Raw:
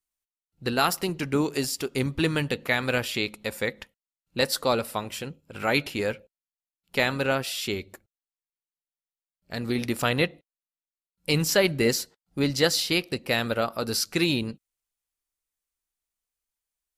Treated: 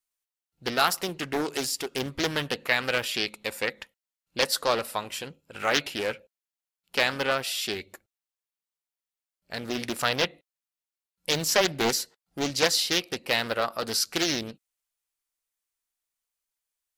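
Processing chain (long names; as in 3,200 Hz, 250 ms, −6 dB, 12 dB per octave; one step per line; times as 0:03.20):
low-shelf EQ 340 Hz −10 dB
highs frequency-modulated by the lows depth 0.57 ms
level +1.5 dB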